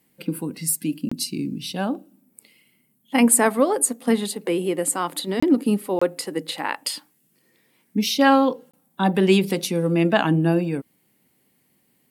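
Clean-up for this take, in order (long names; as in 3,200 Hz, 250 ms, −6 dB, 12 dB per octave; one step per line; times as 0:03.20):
repair the gap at 0:01.09/0:05.40/0:05.99/0:08.71, 25 ms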